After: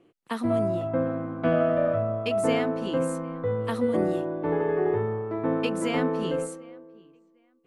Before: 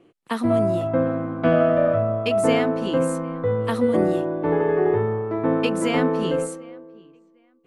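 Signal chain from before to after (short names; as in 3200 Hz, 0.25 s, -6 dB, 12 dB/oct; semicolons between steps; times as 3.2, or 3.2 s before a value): 0.67–1.68 high shelf 5400 Hz -> 9800 Hz -9 dB; gain -5 dB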